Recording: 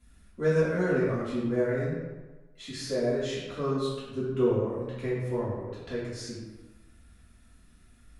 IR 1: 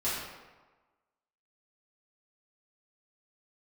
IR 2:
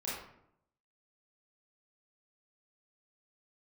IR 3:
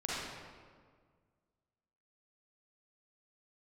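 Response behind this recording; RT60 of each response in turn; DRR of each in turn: 1; 1.3 s, 0.75 s, 1.8 s; -11.5 dB, -8.5 dB, -7.5 dB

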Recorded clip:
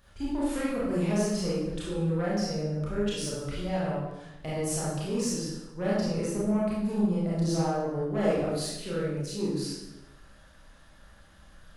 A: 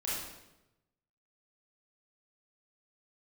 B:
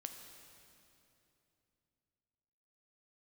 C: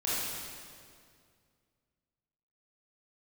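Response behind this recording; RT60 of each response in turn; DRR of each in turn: A; 0.95 s, 2.9 s, 2.2 s; -8.0 dB, 4.5 dB, -9.5 dB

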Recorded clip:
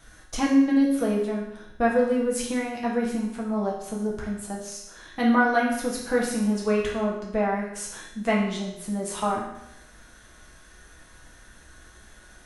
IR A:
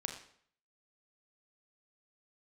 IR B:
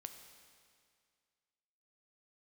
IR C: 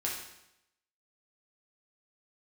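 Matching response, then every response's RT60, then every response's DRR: C; 0.60 s, 2.1 s, 0.85 s; 3.5 dB, 6.0 dB, -4.0 dB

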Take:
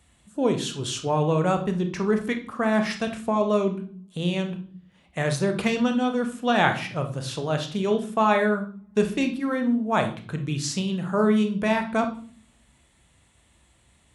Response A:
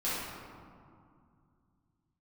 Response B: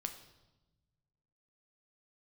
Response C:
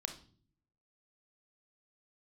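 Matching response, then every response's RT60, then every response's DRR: C; 2.3 s, 1.1 s, no single decay rate; -11.0 dB, 5.5 dB, 6.0 dB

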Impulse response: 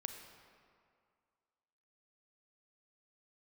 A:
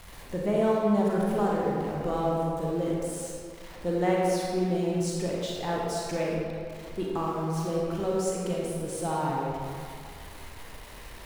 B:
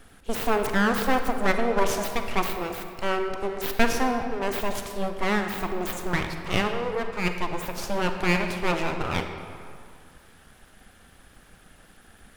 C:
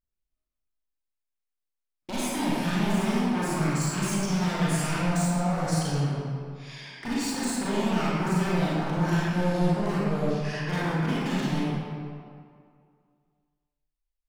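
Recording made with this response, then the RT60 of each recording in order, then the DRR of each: B; 2.2 s, 2.2 s, 2.2 s; -4.0 dB, 5.5 dB, -9.0 dB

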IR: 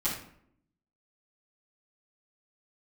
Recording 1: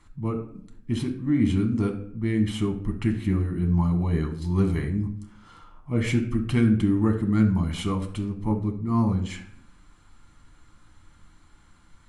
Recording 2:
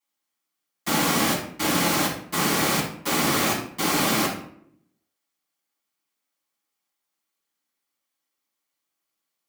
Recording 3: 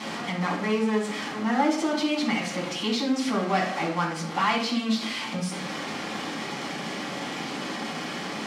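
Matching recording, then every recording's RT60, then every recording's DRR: 2; 0.65 s, 0.65 s, 0.65 s; 3.0 dB, -11.5 dB, -6.0 dB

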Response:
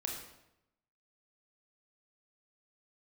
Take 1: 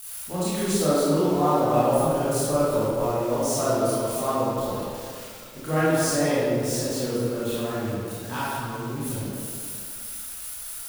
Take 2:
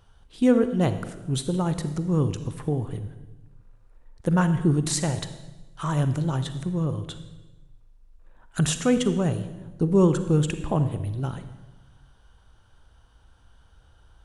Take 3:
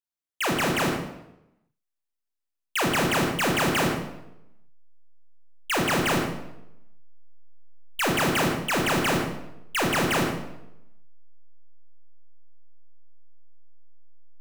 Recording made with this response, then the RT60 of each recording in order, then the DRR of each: 3; 2.2 s, 1.1 s, 0.85 s; -10.5 dB, 10.0 dB, 0.0 dB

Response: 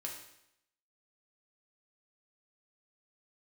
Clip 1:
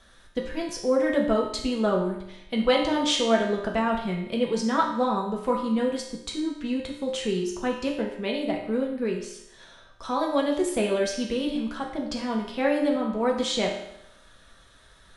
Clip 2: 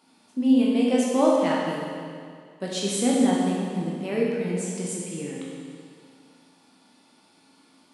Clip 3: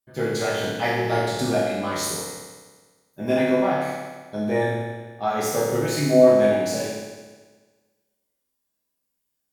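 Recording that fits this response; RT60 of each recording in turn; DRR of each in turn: 1; 0.80 s, 2.2 s, 1.4 s; -1.0 dB, -4.5 dB, -9.5 dB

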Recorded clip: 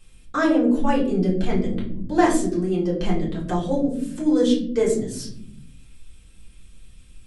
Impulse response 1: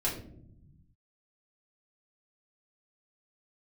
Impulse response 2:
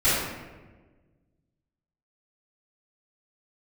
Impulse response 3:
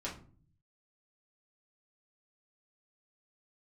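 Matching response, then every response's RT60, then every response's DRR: 1; 0.75 s, 1.3 s, 0.45 s; -6.5 dB, -16.0 dB, -6.5 dB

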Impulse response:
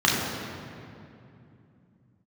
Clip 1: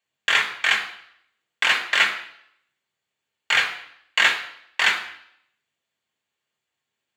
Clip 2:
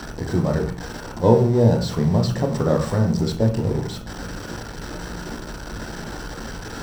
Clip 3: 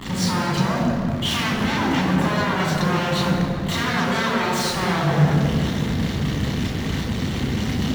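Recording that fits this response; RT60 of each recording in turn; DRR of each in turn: 3; 0.70 s, 0.45 s, 2.7 s; 0.0 dB, 3.0 dB, -4.5 dB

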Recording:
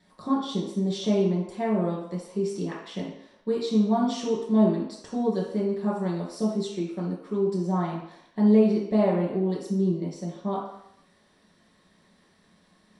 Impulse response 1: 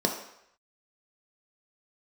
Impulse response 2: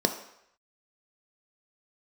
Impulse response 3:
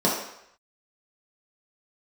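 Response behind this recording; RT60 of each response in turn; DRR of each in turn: 3; 0.75 s, 0.75 s, 0.75 s; 1.5 dB, 6.0 dB, -6.0 dB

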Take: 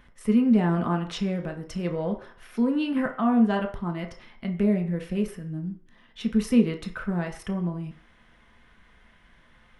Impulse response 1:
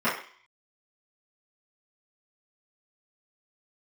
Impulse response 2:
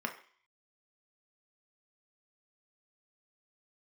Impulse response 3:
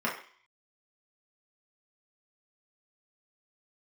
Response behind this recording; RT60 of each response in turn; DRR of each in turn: 2; 0.50 s, 0.50 s, 0.50 s; -13.5 dB, 3.0 dB, -5.0 dB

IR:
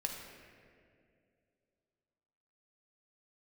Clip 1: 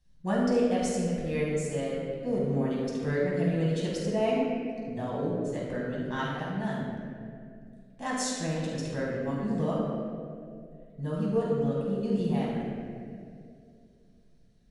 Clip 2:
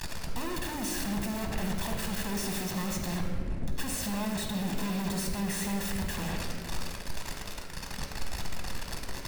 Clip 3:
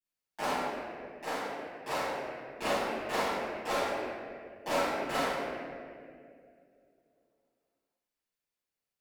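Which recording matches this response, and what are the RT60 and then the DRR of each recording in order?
2; 2.4 s, 2.4 s, 2.4 s; -6.0 dB, 1.5 dB, -15.5 dB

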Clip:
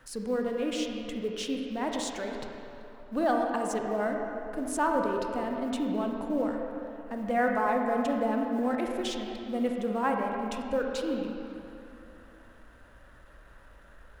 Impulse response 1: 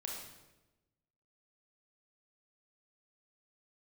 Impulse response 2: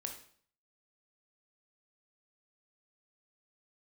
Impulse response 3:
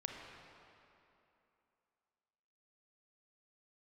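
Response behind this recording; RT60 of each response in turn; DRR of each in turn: 3; 1.1 s, 0.55 s, 2.9 s; -1.5 dB, 3.0 dB, 1.0 dB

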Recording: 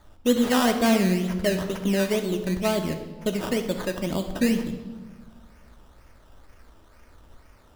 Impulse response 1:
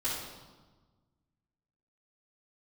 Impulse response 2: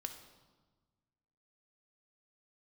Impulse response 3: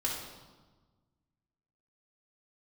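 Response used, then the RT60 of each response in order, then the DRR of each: 2; 1.3 s, 1.3 s, 1.3 s; -12.0 dB, 5.0 dB, -5.0 dB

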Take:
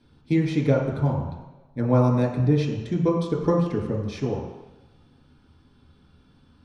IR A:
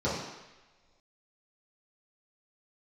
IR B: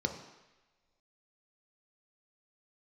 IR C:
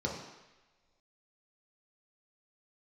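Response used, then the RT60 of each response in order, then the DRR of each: C; no single decay rate, no single decay rate, no single decay rate; -10.5 dB, 4.0 dB, -2.5 dB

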